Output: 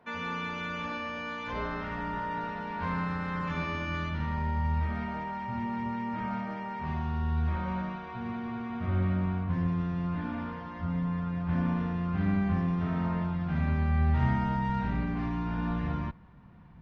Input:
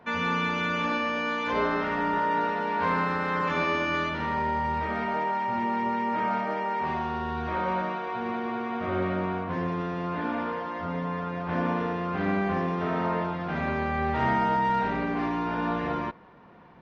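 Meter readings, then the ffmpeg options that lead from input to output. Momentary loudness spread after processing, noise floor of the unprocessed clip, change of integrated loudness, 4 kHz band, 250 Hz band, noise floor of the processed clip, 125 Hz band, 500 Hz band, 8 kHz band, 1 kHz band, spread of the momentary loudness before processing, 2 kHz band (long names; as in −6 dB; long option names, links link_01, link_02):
8 LU, −34 dBFS, −3.5 dB, −7.5 dB, −1.0 dB, −41 dBFS, +5.0 dB, −11.0 dB, can't be measured, −9.0 dB, 5 LU, −8.0 dB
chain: -af "asubboost=boost=11:cutoff=130,volume=-7.5dB"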